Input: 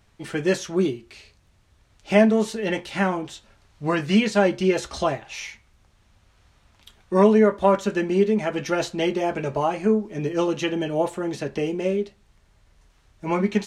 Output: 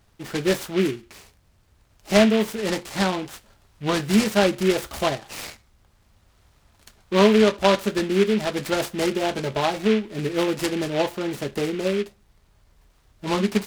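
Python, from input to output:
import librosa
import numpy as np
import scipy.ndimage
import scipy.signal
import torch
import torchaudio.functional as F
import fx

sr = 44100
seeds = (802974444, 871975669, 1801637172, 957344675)

y = fx.noise_mod_delay(x, sr, seeds[0], noise_hz=2200.0, depth_ms=0.085)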